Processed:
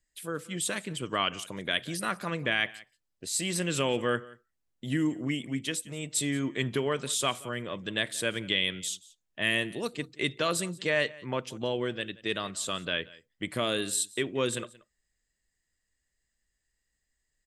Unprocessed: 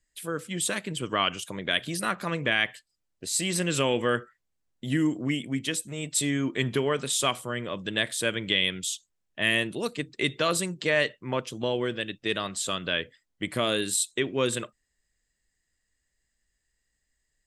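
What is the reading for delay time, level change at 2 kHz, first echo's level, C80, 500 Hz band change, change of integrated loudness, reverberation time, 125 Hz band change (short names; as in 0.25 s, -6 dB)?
0.179 s, -3.0 dB, -21.5 dB, none, -3.0 dB, -3.0 dB, none, -3.0 dB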